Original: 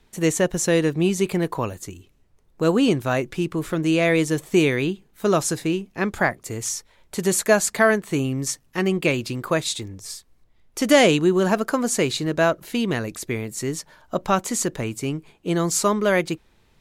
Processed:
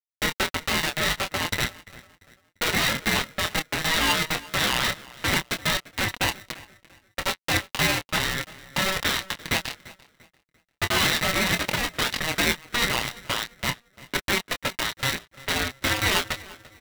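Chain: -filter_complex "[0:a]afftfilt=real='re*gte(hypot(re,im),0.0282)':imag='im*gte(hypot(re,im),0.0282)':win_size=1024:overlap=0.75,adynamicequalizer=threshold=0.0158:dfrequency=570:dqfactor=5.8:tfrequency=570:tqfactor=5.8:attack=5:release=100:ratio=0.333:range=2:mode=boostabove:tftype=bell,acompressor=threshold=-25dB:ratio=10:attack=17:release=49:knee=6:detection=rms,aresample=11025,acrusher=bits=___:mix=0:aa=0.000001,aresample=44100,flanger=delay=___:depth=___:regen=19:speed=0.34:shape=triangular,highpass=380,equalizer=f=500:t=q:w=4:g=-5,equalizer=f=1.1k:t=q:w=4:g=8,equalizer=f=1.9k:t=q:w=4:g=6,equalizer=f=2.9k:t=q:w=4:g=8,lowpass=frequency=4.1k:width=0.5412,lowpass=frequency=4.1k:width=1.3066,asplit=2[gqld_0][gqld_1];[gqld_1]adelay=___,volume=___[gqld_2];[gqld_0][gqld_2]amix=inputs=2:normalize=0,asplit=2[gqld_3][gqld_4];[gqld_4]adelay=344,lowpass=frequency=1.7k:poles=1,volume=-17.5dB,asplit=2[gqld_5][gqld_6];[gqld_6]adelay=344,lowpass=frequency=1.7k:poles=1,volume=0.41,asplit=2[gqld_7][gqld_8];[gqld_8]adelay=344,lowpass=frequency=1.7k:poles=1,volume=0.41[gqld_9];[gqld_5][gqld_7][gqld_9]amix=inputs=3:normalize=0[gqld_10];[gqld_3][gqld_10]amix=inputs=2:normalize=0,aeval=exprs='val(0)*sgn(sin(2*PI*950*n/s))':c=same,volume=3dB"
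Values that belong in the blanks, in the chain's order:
3, 2.5, 8.5, 24, -7dB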